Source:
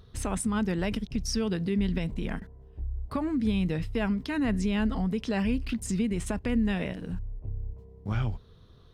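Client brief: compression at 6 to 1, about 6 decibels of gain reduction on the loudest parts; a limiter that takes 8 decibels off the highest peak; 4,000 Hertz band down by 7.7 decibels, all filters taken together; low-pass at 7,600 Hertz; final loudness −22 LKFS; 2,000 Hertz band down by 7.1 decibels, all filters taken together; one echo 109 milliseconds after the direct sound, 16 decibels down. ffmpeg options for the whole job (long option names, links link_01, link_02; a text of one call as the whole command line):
ffmpeg -i in.wav -af "lowpass=7600,equalizer=frequency=2000:width_type=o:gain=-7,equalizer=frequency=4000:width_type=o:gain=-8.5,acompressor=threshold=-29dB:ratio=6,alimiter=level_in=3.5dB:limit=-24dB:level=0:latency=1,volume=-3.5dB,aecho=1:1:109:0.158,volume=14.5dB" out.wav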